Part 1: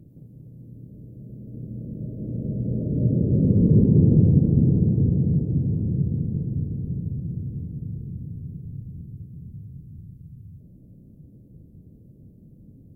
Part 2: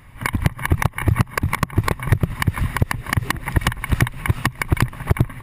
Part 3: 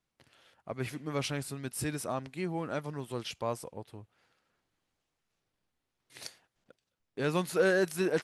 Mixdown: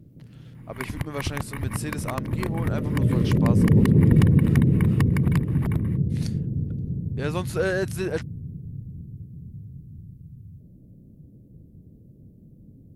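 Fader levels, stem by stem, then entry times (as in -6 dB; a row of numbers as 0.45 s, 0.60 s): -0.5 dB, -12.0 dB, +1.5 dB; 0.00 s, 0.55 s, 0.00 s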